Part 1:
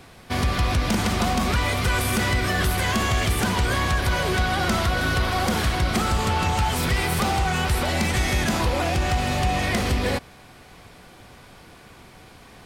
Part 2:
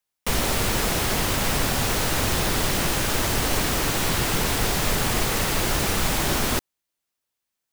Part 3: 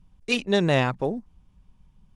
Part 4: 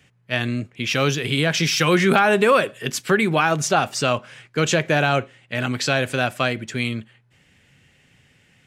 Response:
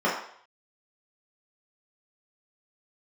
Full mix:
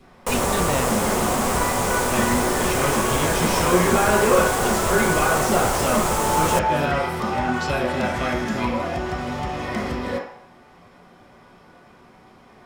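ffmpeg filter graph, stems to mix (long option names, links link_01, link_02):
-filter_complex "[0:a]volume=-10.5dB,asplit=2[link_01][link_02];[link_02]volume=-7.5dB[link_03];[1:a]equalizer=frequency=500:width_type=o:width=1:gain=10,equalizer=frequency=1000:width_type=o:width=1:gain=9,equalizer=frequency=4000:width_type=o:width=1:gain=-4,equalizer=frequency=8000:width_type=o:width=1:gain=9,volume=-5.5dB[link_04];[2:a]volume=-5.5dB[link_05];[3:a]adelay=1800,volume=-10dB,asplit=2[link_06][link_07];[link_07]volume=-10dB[link_08];[4:a]atrim=start_sample=2205[link_09];[link_03][link_08]amix=inputs=2:normalize=0[link_10];[link_10][link_09]afir=irnorm=-1:irlink=0[link_11];[link_01][link_04][link_05][link_06][link_11]amix=inputs=5:normalize=0"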